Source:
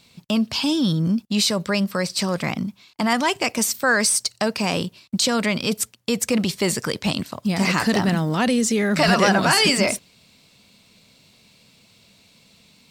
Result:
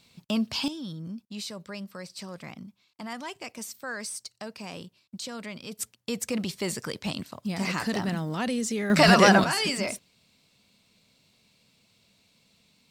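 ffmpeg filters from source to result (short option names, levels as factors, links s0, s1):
-af "asetnsamples=n=441:p=0,asendcmd='0.68 volume volume -17dB;5.79 volume volume -9dB;8.9 volume volume 0dB;9.44 volume volume -10dB',volume=0.501"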